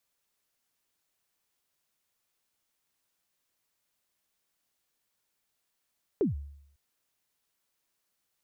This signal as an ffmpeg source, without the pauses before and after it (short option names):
-f lavfi -i "aevalsrc='0.0944*pow(10,-3*t/0.73)*sin(2*PI*(460*0.138/log(71/460)*(exp(log(71/460)*min(t,0.138)/0.138)-1)+71*max(t-0.138,0)))':d=0.55:s=44100"